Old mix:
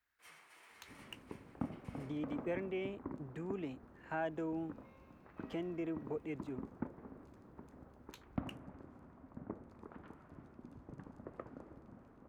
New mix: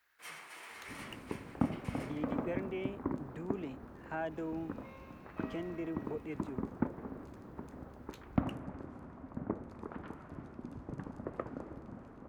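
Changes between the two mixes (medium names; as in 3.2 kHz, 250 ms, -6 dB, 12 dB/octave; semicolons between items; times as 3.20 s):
first sound +11.5 dB; second sound +8.5 dB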